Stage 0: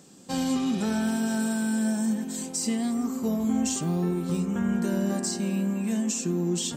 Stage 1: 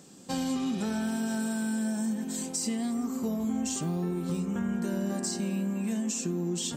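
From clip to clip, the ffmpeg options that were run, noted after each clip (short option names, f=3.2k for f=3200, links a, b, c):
-af "acompressor=threshold=-29dB:ratio=2.5"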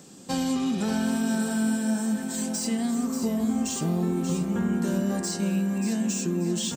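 -filter_complex "[0:a]acrossover=split=690|5100[a][b][c];[c]asoftclip=type=hard:threshold=-36dB[d];[a][b][d]amix=inputs=3:normalize=0,aecho=1:1:585|1170|1755|2340|2925:0.376|0.154|0.0632|0.0259|0.0106,volume=4dB"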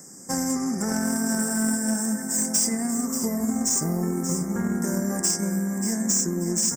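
-af "asuperstop=centerf=3300:order=20:qfactor=1.2,highshelf=f=2.9k:g=11,aeval=exprs='0.266*(cos(1*acos(clip(val(0)/0.266,-1,1)))-cos(1*PI/2))+0.0376*(cos(3*acos(clip(val(0)/0.266,-1,1)))-cos(3*PI/2))':c=same,volume=3.5dB"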